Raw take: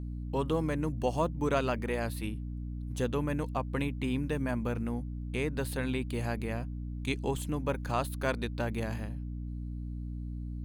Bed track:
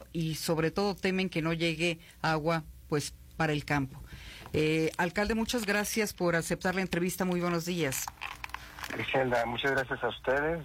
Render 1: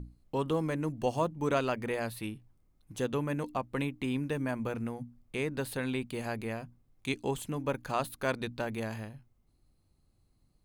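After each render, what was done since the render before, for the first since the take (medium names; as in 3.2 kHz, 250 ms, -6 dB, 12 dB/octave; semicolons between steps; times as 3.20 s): hum notches 60/120/180/240/300 Hz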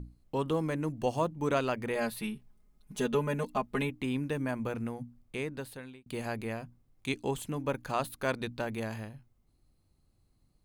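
1.95–3.90 s: comb 4.8 ms, depth 94%; 5.21–6.06 s: fade out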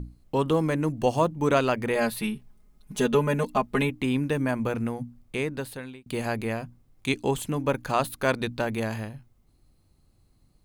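trim +7 dB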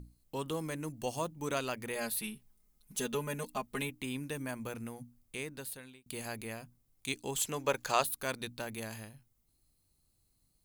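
7.37–8.04 s: time-frequency box 350–8000 Hz +8 dB; pre-emphasis filter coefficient 0.8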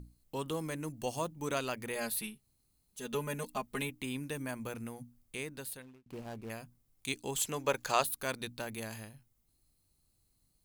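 2.34–3.04 s: room tone, crossfade 0.24 s; 5.82–6.50 s: median filter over 25 samples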